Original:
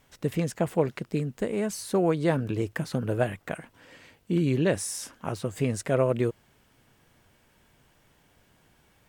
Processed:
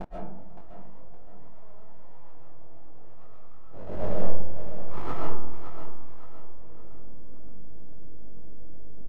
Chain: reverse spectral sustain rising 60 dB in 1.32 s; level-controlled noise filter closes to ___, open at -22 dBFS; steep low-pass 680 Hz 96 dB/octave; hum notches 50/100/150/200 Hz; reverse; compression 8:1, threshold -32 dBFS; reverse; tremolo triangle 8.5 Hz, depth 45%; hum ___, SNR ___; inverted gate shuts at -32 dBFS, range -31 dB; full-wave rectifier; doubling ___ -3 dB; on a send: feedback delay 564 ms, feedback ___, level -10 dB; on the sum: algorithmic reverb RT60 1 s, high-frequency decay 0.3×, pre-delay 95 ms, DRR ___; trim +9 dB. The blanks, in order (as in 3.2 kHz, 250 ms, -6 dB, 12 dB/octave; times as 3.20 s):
320 Hz, 50 Hz, 30 dB, 21 ms, 40%, -3.5 dB